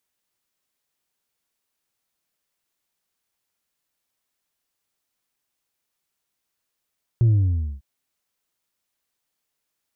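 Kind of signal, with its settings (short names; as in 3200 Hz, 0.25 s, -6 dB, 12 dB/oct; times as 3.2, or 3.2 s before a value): sub drop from 120 Hz, over 0.60 s, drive 2.5 dB, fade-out 0.55 s, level -13.5 dB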